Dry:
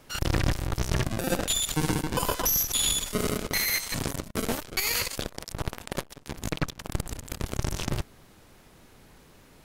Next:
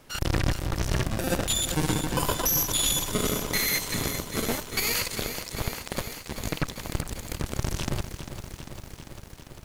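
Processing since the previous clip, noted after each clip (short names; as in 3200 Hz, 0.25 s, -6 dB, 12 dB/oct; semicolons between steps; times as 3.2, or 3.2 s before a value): lo-fi delay 0.397 s, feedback 80%, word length 8-bit, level -10 dB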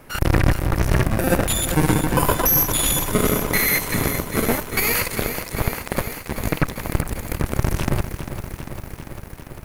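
band shelf 4900 Hz -8.5 dB; gain +8.5 dB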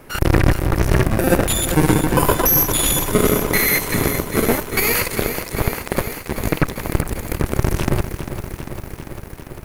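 bell 380 Hz +4 dB 0.62 oct; gain +2 dB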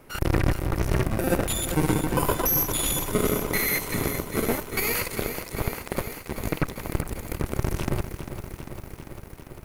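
notch 1700 Hz, Q 17; gain -8 dB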